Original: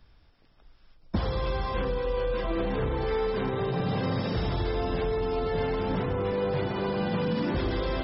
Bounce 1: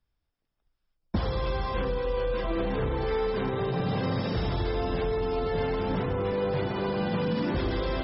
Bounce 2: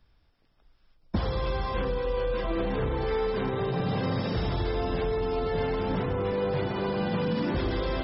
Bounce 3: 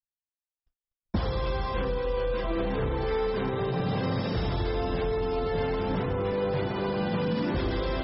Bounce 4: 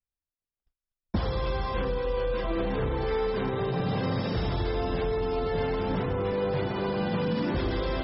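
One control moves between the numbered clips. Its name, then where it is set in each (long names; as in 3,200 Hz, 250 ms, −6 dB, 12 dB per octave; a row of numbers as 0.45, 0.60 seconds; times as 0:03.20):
noise gate, range: −21, −6, −59, −39 decibels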